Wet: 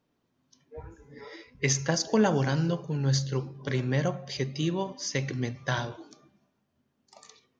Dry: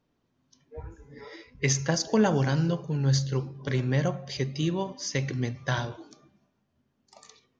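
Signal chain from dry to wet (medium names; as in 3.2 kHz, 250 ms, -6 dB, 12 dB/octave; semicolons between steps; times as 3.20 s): bass shelf 75 Hz -9 dB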